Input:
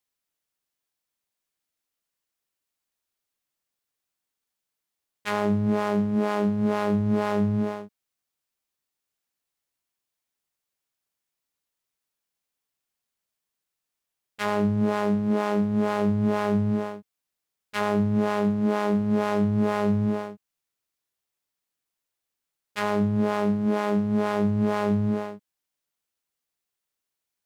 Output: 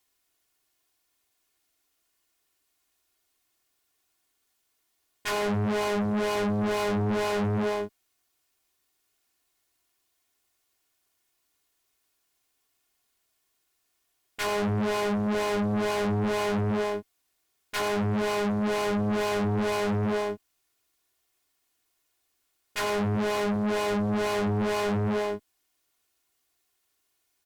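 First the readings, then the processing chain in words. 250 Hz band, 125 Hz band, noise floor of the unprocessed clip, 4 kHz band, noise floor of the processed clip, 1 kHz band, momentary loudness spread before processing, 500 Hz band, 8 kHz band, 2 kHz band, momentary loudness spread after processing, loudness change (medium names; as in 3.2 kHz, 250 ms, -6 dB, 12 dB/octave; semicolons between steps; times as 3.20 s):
-5.0 dB, -2.5 dB, -85 dBFS, +6.0 dB, -75 dBFS, -1.0 dB, 7 LU, -0.5 dB, no reading, +2.0 dB, 5 LU, -3.0 dB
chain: saturation -24 dBFS, distortion -10 dB; comb 2.8 ms, depth 55%; Chebyshev shaper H 5 -9 dB, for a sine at -21 dBFS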